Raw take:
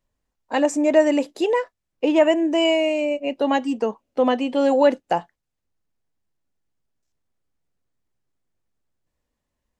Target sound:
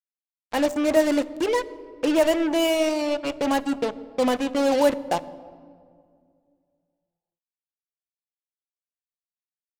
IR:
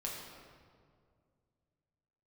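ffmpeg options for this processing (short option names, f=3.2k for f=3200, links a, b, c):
-filter_complex "[0:a]acrusher=bits=3:mix=0:aa=0.5,asplit=2[a][b];[1:a]atrim=start_sample=2205,lowshelf=f=390:g=10[c];[b][c]afir=irnorm=-1:irlink=0,volume=-15.5dB[d];[a][d]amix=inputs=2:normalize=0,volume=-4.5dB"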